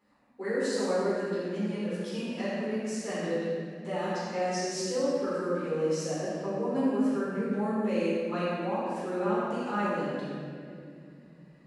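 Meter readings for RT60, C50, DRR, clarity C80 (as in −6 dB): 2.5 s, −4.5 dB, −11.0 dB, −2.0 dB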